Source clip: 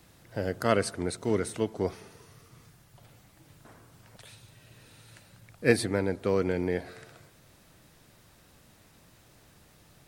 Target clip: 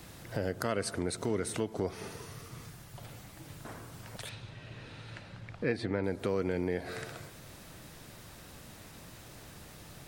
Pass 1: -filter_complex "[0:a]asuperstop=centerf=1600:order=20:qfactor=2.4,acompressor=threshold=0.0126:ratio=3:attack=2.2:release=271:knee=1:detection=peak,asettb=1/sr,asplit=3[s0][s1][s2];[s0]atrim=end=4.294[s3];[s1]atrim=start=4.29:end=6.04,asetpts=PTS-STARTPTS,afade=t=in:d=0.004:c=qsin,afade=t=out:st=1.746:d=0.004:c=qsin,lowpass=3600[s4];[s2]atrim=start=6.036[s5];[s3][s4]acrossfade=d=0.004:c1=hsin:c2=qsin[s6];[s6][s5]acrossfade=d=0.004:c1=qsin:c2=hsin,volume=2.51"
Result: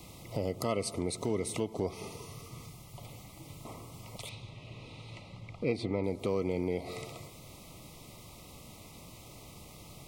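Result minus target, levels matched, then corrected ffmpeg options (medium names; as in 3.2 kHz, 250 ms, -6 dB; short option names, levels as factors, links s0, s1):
2 kHz band -5.5 dB
-filter_complex "[0:a]acompressor=threshold=0.0126:ratio=3:attack=2.2:release=271:knee=1:detection=peak,asettb=1/sr,asplit=3[s0][s1][s2];[s0]atrim=end=4.294[s3];[s1]atrim=start=4.29:end=6.04,asetpts=PTS-STARTPTS,afade=t=in:d=0.004:c=qsin,afade=t=out:st=1.746:d=0.004:c=qsin,lowpass=3600[s4];[s2]atrim=start=6.036[s5];[s3][s4]acrossfade=d=0.004:c1=hsin:c2=qsin[s6];[s6][s5]acrossfade=d=0.004:c1=qsin:c2=hsin,volume=2.51"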